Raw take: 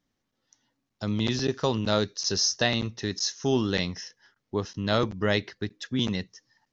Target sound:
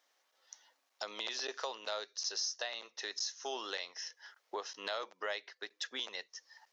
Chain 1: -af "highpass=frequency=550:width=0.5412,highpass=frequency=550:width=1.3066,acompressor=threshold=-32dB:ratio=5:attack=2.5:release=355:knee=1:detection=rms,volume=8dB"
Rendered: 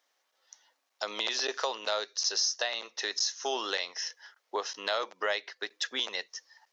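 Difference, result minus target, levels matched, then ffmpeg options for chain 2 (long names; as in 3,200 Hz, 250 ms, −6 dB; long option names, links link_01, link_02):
downward compressor: peak gain reduction −8 dB
-af "highpass=frequency=550:width=0.5412,highpass=frequency=550:width=1.3066,acompressor=threshold=-42dB:ratio=5:attack=2.5:release=355:knee=1:detection=rms,volume=8dB"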